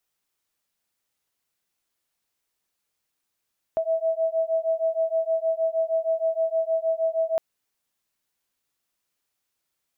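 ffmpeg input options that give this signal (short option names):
-f lavfi -i "aevalsrc='0.0596*(sin(2*PI*648*t)+sin(2*PI*654.4*t))':d=3.61:s=44100"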